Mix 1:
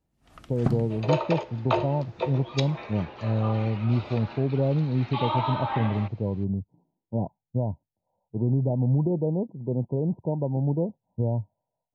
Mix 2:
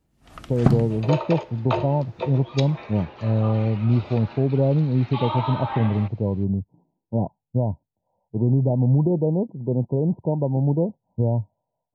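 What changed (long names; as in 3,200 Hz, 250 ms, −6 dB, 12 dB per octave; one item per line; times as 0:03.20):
speech +4.5 dB
first sound +8.0 dB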